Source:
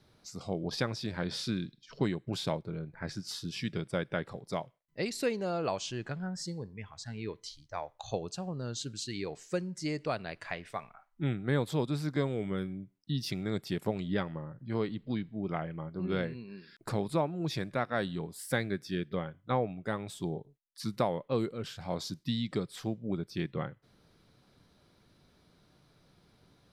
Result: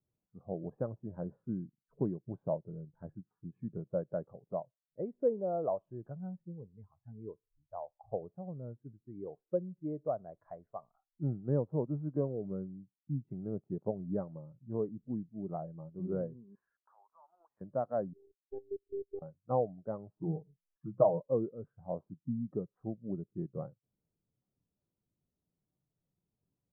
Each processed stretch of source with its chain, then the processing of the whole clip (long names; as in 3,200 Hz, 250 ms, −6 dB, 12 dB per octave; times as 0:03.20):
0:16.55–0:17.61: high-pass filter 910 Hz 24 dB per octave + leveller curve on the samples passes 3 + downward compressor 12 to 1, threshold −44 dBFS
0:18.13–0:19.22: drawn EQ curve 270 Hz 0 dB, 410 Hz +5 dB, 1,400 Hz −21 dB + output level in coarse steps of 16 dB + phases set to zero 397 Hz
0:20.17–0:21.20: upward compression, threshold −44 dBFS + mains-hum notches 60/120/180 Hz + comb filter 6.4 ms, depth 81%
whole clip: low-pass filter 1,200 Hz 24 dB per octave; dynamic equaliser 610 Hz, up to +5 dB, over −48 dBFS, Q 2.2; every bin expanded away from the loudest bin 1.5 to 1; level −2 dB